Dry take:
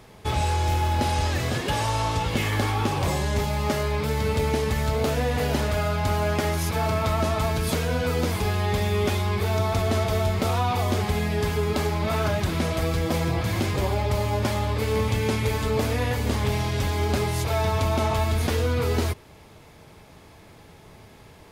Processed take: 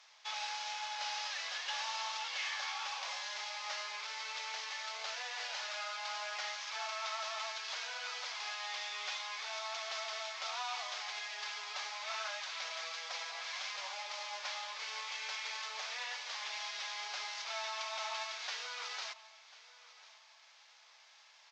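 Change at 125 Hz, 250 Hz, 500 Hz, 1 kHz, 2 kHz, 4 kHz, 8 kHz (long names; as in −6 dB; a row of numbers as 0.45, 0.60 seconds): below −40 dB, below −40 dB, −25.0 dB, −14.0 dB, −8.5 dB, −5.0 dB, −9.5 dB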